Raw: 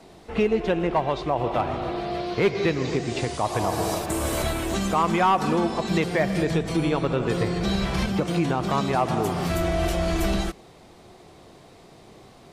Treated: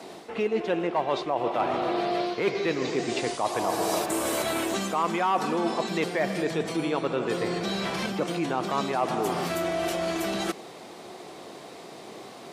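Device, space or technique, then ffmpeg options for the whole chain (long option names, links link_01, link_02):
compression on the reversed sound: -af "areverse,acompressor=threshold=-30dB:ratio=6,areverse,highpass=250,volume=7.5dB"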